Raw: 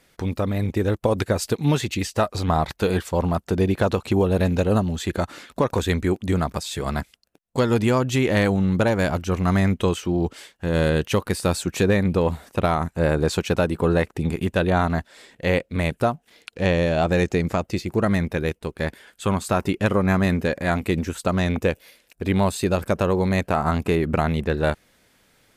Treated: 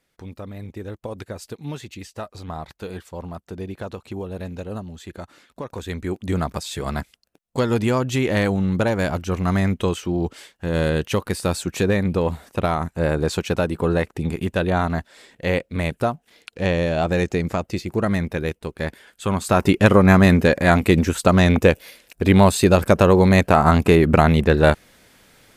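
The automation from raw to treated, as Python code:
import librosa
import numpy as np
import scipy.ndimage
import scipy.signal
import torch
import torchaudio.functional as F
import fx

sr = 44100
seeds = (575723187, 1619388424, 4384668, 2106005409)

y = fx.gain(x, sr, db=fx.line((5.65, -11.5), (6.38, -0.5), (19.28, -0.5), (19.7, 7.0)))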